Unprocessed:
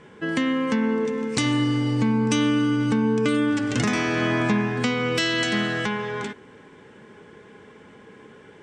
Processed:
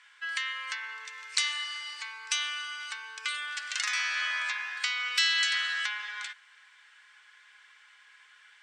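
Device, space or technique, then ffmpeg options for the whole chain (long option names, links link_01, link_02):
headphones lying on a table: -af "highpass=frequency=1400:width=0.5412,highpass=frequency=1400:width=1.3066,equalizer=frequency=4300:width_type=o:width=0.48:gain=5,volume=-1.5dB"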